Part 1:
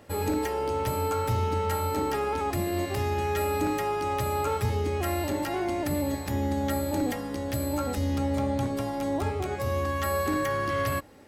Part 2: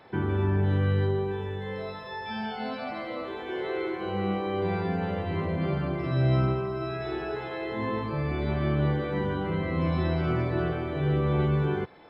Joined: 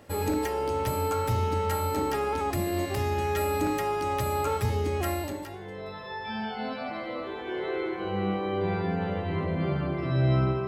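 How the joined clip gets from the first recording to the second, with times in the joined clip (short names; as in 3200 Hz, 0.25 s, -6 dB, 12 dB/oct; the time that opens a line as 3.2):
part 1
5.53 switch to part 2 from 1.54 s, crossfade 0.92 s quadratic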